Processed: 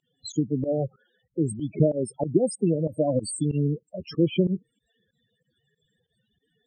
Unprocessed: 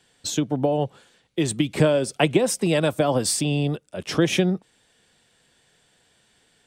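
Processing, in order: loudest bins only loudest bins 8; pump 94 bpm, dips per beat 2, -23 dB, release 78 ms; cascading phaser rising 1.3 Hz

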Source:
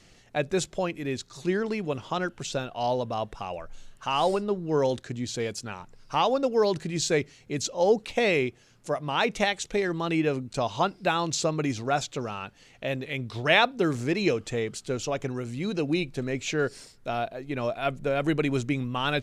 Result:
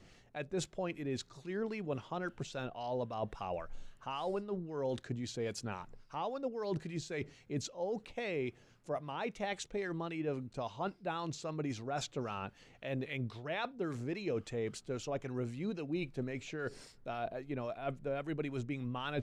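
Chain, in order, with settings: high shelf 3300 Hz -8.5 dB; reverse; compressor 6:1, threshold -33 dBFS, peak gain reduction 15.5 dB; reverse; harmonic tremolo 3.7 Hz, depth 50%, crossover 990 Hz

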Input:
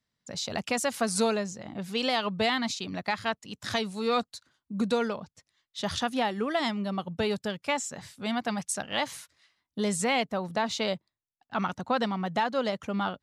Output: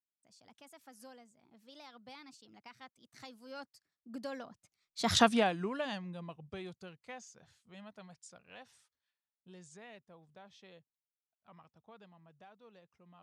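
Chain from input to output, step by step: Doppler pass-by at 5.21, 47 m/s, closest 5 m; gain +5 dB

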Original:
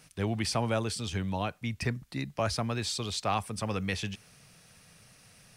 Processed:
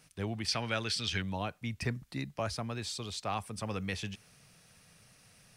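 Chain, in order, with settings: vocal rider 0.5 s; 0.48–1.22 band shelf 2800 Hz +10.5 dB 2.3 oct; gain -5 dB

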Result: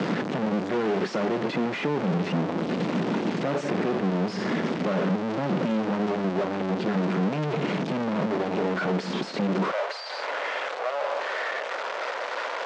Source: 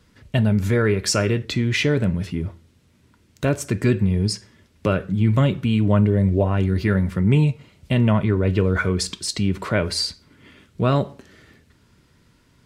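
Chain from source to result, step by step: infinite clipping; de-esser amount 95%; Bessel low-pass 4100 Hz, order 8; gate with hold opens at -26 dBFS; Chebyshev high-pass 170 Hz, order 4, from 9.7 s 530 Hz; three-band squash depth 40%

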